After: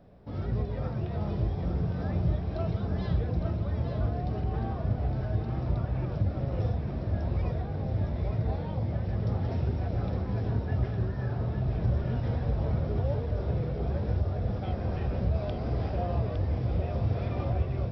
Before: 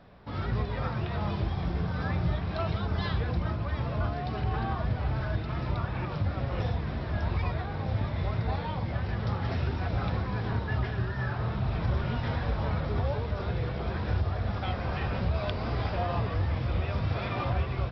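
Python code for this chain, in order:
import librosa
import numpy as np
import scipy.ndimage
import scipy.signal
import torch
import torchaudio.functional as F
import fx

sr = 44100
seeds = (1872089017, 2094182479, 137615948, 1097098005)

p1 = fx.band_shelf(x, sr, hz=2100.0, db=-11.0, octaves=2.8)
y = p1 + fx.echo_single(p1, sr, ms=860, db=-6.5, dry=0)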